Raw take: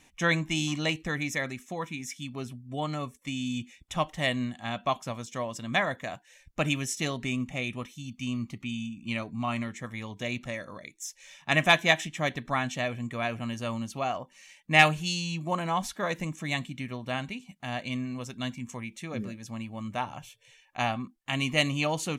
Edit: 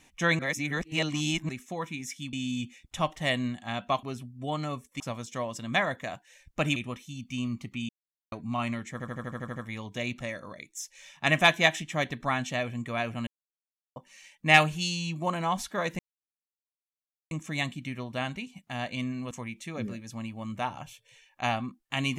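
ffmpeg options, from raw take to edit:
ffmpeg -i in.wav -filter_complex "[0:a]asplit=21[link_01][link_02][link_03][link_04][link_05][link_06][link_07][link_08][link_09][link_10][link_11][link_12][link_13][link_14][link_15][link_16][link_17][link_18][link_19][link_20][link_21];[link_01]atrim=end=0.392[link_22];[link_02]atrim=start=0.388:end=1.492,asetpts=PTS-STARTPTS,areverse[link_23];[link_03]atrim=start=1.488:end=2.332[link_24];[link_04]atrim=start=3.298:end=5.002[link_25];[link_05]atrim=start=2.328:end=3.302[link_26];[link_06]atrim=start=4.998:end=6.762[link_27];[link_07]atrim=start=7.648:end=8.78,asetpts=PTS-STARTPTS,afade=type=out:start_time=1.128:duration=0.004:curve=hsin[link_28];[link_08]atrim=start=8.78:end=9.21,asetpts=PTS-STARTPTS,volume=0[link_29];[link_09]atrim=start=9.21:end=9.892,asetpts=PTS-STARTPTS,afade=type=in:duration=0.004:curve=hsin[link_30];[link_10]atrim=start=9.808:end=9.892[link_31];[link_11]atrim=start=9.808:end=9.892[link_32];[link_12]atrim=start=9.808:end=9.892[link_33];[link_13]atrim=start=9.808:end=9.892[link_34];[link_14]atrim=start=9.808:end=9.892[link_35];[link_15]atrim=start=9.808:end=9.892[link_36];[link_16]atrim=start=9.808:end=9.892[link_37];[link_17]atrim=start=9.808:end=13.52,asetpts=PTS-STARTPTS,afade=type=out:start_time=3.708:duration=0.004:curve=hsin[link_38];[link_18]atrim=start=13.52:end=14.21,asetpts=PTS-STARTPTS,volume=0[link_39];[link_19]atrim=start=14.21:end=16.24,asetpts=PTS-STARTPTS,afade=type=in:duration=0.004:curve=hsin,afade=type=out:start_time=2.026:duration=0.004:curve=hsin,apad=pad_dur=1.32[link_40];[link_20]atrim=start=16.24:end=18.242,asetpts=PTS-STARTPTS,afade=type=in:duration=0.004:curve=hsin[link_41];[link_21]atrim=start=18.668[link_42];[link_22][link_23]acrossfade=duration=0.004:curve1=hsin:curve2=hsin[link_43];[link_43][link_24]acrossfade=duration=0.004:curve1=hsin:curve2=hsin[link_44];[link_44][link_25]acrossfade=duration=0.004:curve1=hsin:curve2=hsin[link_45];[link_45][link_26]acrossfade=duration=0.004:curve1=hsin:curve2=hsin[link_46];[link_46][link_27]acrossfade=duration=0.004:curve1=hsin:curve2=hsin[link_47];[link_28][link_29][link_30]concat=n=3:v=0:a=1[link_48];[link_47][link_48]acrossfade=duration=0.004:curve1=hsin:curve2=hsin[link_49];[link_49][link_31]acrossfade=duration=0.004:curve1=hsin:curve2=hsin[link_50];[link_50][link_32]acrossfade=duration=0.004:curve1=hsin:curve2=hsin[link_51];[link_51][link_33]acrossfade=duration=0.004:curve1=hsin:curve2=hsin[link_52];[link_52][link_34]acrossfade=duration=0.004:curve1=hsin:curve2=hsin[link_53];[link_53][link_35]acrossfade=duration=0.004:curve1=hsin:curve2=hsin[link_54];[link_54][link_36]acrossfade=duration=0.004:curve1=hsin:curve2=hsin[link_55];[link_55][link_37]acrossfade=duration=0.004:curve1=hsin:curve2=hsin[link_56];[link_38][link_39][link_40][link_41]concat=n=4:v=0:a=1[link_57];[link_56][link_57]acrossfade=duration=0.004:curve1=hsin:curve2=hsin[link_58];[link_58][link_42]acrossfade=duration=0.004:curve1=hsin:curve2=hsin" out.wav

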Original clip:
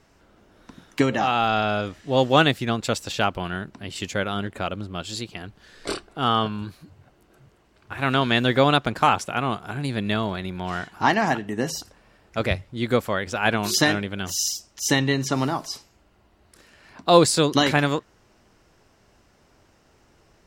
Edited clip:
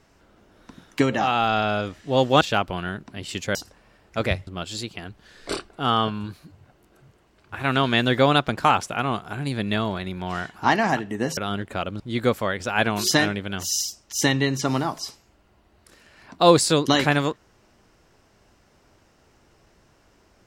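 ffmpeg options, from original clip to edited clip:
ffmpeg -i in.wav -filter_complex "[0:a]asplit=6[link_01][link_02][link_03][link_04][link_05][link_06];[link_01]atrim=end=2.412[link_07];[link_02]atrim=start=3.078:end=4.222[link_08];[link_03]atrim=start=11.748:end=12.672[link_09];[link_04]atrim=start=4.848:end=11.752[link_10];[link_05]atrim=start=4.218:end=4.852[link_11];[link_06]atrim=start=12.668[link_12];[link_07][link_08]acrossfade=duration=0.004:curve1=hsin:curve2=hsin[link_13];[link_13][link_09]acrossfade=duration=0.004:curve1=hsin:curve2=hsin[link_14];[link_14][link_10]acrossfade=duration=0.004:curve1=hsin:curve2=hsin[link_15];[link_15][link_11]acrossfade=duration=0.004:curve1=hsin:curve2=hsin[link_16];[link_16][link_12]acrossfade=duration=0.004:curve1=hsin:curve2=hsin" out.wav

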